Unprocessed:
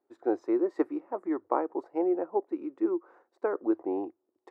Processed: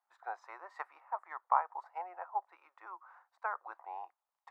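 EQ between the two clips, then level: steep high-pass 850 Hz 36 dB/octave; treble shelf 2.3 kHz -10.5 dB; +5.5 dB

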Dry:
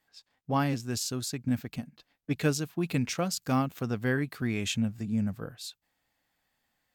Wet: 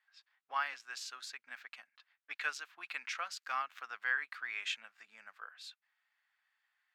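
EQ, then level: high-pass 1.4 kHz 24 dB/octave; low-pass 2.1 kHz 6 dB/octave; tilt EQ -4 dB/octave; +7.5 dB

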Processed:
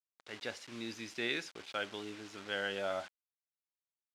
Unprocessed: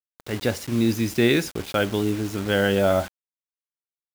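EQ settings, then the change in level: differentiator; tape spacing loss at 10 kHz 32 dB; +6.5 dB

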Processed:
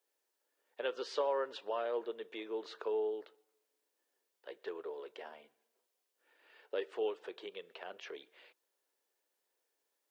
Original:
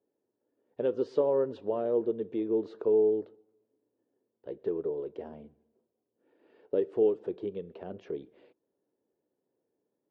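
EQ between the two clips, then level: high-pass 1.5 kHz 12 dB/octave; +11.0 dB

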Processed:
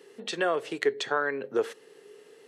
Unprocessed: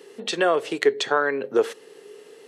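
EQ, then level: peaking EQ 110 Hz +4 dB 1.3 oct; peaking EQ 1.7 kHz +2.5 dB; -7.0 dB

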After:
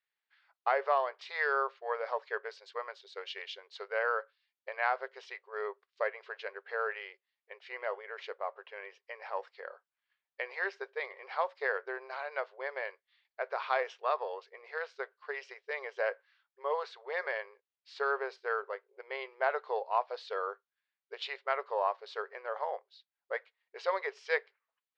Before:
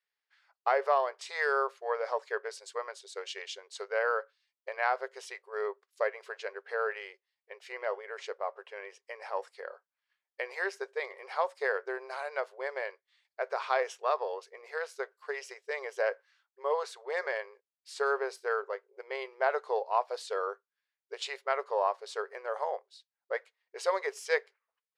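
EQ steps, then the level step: low-pass 4.2 kHz 24 dB/octave; bass shelf 460 Hz -7.5 dB; 0.0 dB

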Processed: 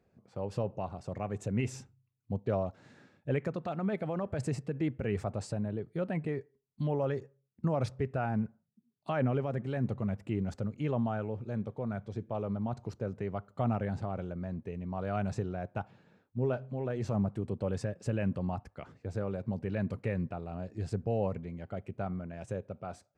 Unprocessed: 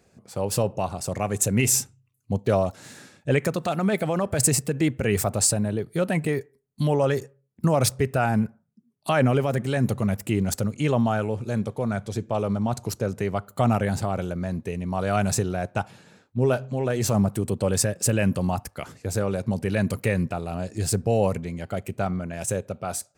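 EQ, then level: tape spacing loss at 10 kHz 27 dB; -8.5 dB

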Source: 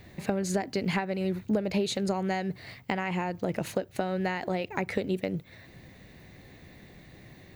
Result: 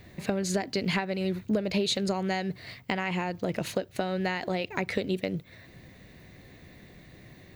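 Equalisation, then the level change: band-stop 830 Hz, Q 12; dynamic bell 3.9 kHz, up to +6 dB, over -51 dBFS, Q 1; 0.0 dB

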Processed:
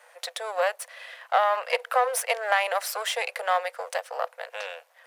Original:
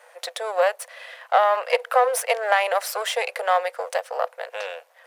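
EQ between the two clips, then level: high-pass 720 Hz 6 dB/octave; -1.5 dB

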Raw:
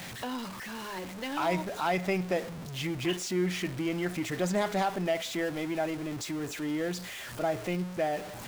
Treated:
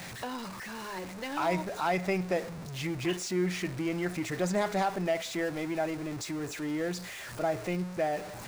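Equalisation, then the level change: graphic EQ with 31 bands 250 Hz -4 dB, 3.15 kHz -5 dB, 16 kHz -9 dB; 0.0 dB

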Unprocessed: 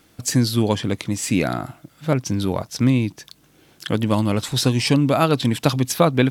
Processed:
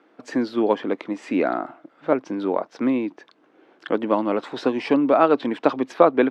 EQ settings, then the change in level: high-pass 290 Hz 24 dB/octave; low-pass 1.5 kHz 12 dB/octave; +3.0 dB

